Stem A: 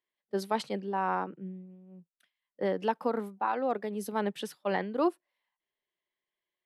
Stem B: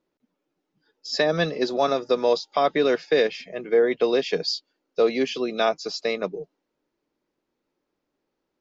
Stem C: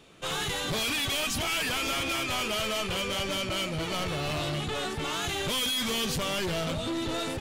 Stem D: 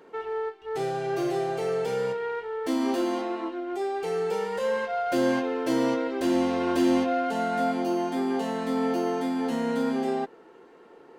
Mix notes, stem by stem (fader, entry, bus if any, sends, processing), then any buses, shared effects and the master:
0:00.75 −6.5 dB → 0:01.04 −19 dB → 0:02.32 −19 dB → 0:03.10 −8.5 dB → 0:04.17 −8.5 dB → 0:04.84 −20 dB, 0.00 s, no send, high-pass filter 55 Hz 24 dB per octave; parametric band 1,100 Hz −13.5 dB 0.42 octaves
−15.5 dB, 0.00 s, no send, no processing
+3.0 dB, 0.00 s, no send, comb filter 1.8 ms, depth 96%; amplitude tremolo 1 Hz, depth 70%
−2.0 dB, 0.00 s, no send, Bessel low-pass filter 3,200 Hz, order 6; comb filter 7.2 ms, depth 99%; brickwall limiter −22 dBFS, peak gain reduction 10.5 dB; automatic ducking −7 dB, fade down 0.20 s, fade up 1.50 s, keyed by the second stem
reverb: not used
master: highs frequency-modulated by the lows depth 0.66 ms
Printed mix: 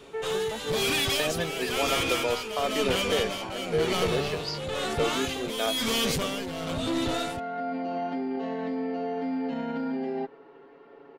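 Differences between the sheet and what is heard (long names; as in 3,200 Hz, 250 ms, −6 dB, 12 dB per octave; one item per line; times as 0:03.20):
stem B −15.5 dB → −8.5 dB
stem C: missing comb filter 1.8 ms, depth 96%
master: missing highs frequency-modulated by the lows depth 0.66 ms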